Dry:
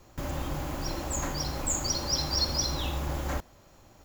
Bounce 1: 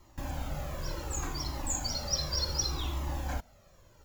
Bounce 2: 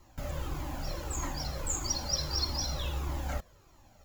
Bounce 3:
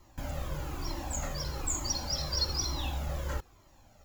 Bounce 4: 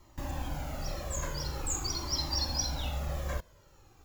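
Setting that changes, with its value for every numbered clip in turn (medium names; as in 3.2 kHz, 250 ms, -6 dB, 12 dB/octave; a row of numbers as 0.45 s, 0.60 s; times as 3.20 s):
Shepard-style flanger, rate: 0.67 Hz, 1.6 Hz, 1.1 Hz, 0.46 Hz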